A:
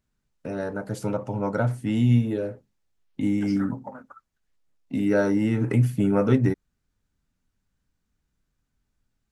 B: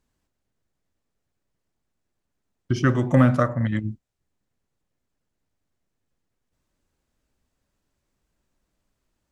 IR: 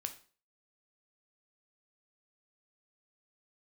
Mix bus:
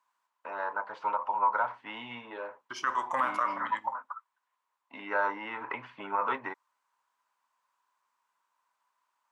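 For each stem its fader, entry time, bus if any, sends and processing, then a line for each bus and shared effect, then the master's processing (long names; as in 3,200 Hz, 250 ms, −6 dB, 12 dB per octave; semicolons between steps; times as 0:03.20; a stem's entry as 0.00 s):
−2.0 dB, 0.00 s, no send, low-pass filter 3,300 Hz 24 dB per octave
−8.0 dB, 0.00 s, send −7 dB, no processing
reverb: on, RT60 0.40 s, pre-delay 5 ms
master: high-pass with resonance 1,000 Hz, resonance Q 9.8; brickwall limiter −18 dBFS, peak gain reduction 9.5 dB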